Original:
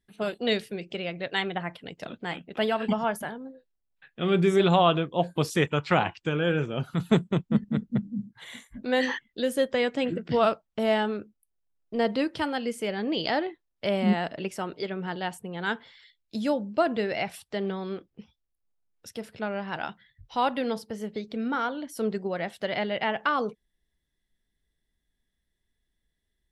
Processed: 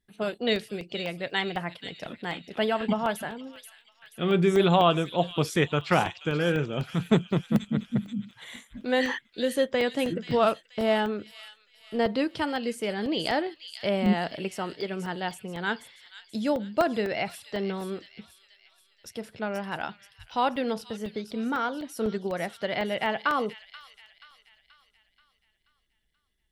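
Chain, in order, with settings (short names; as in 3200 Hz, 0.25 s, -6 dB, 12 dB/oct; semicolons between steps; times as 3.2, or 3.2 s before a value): thin delay 0.481 s, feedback 48%, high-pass 3400 Hz, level -6 dB; crackling interface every 0.25 s, samples 64, zero, from 0.56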